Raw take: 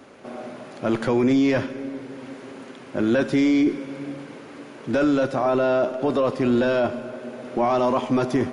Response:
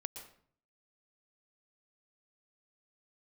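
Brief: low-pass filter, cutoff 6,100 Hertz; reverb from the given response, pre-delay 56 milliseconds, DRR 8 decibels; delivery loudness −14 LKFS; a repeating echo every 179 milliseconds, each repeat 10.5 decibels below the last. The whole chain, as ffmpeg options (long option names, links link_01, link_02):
-filter_complex "[0:a]lowpass=6100,aecho=1:1:179|358|537:0.299|0.0896|0.0269,asplit=2[link_01][link_02];[1:a]atrim=start_sample=2205,adelay=56[link_03];[link_02][link_03]afir=irnorm=-1:irlink=0,volume=-6dB[link_04];[link_01][link_04]amix=inputs=2:normalize=0,volume=7.5dB"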